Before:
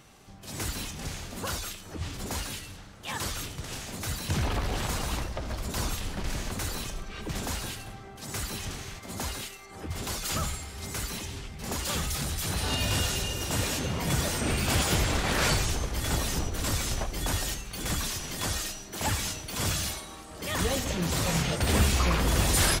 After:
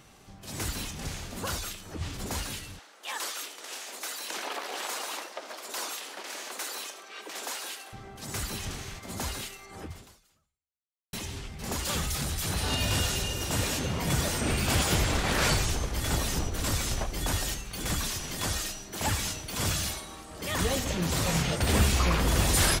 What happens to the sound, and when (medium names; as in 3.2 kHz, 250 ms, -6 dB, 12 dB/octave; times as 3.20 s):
2.79–7.93 s: Bessel high-pass 520 Hz, order 6
9.82–11.13 s: fade out exponential